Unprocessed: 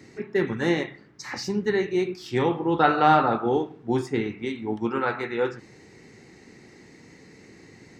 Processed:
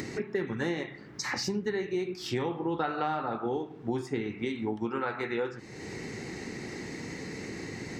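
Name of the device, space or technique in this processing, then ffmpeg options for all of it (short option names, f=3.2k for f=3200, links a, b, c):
upward and downward compression: -af "acompressor=mode=upward:threshold=-32dB:ratio=2.5,acompressor=threshold=-31dB:ratio=6,volume=2.5dB"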